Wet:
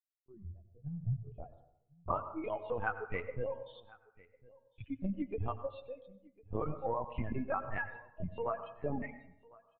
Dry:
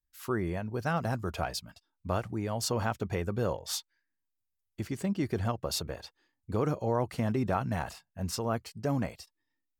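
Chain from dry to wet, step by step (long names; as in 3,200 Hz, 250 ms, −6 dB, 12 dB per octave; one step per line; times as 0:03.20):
spectral dynamics exaggerated over time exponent 1.5
reverb reduction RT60 1.4 s
de-essing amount 100%
noise reduction from a noise print of the clip's start 28 dB
downward compressor 6 to 1, threshold −38 dBFS, peak gain reduction 11 dB
low-pass filter sweep 110 Hz → 1,800 Hz, 0:00.88–0:02.38
linear-prediction vocoder at 8 kHz pitch kept
single-tap delay 1,052 ms −23.5 dB
convolution reverb RT60 0.80 s, pre-delay 83 ms, DRR 11.5 dB
level +4.5 dB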